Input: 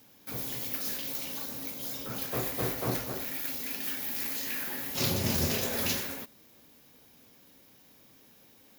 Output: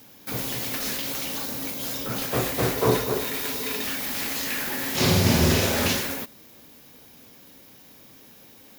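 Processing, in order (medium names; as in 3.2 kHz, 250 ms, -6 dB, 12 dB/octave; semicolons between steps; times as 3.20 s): 2.76–3.84 s: small resonant body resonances 430/1000/3700 Hz, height 14 dB, ringing for 85 ms; 4.76–5.88 s: flutter echo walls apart 8.8 m, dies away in 0.67 s; slew-rate limiter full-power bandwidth 160 Hz; trim +8.5 dB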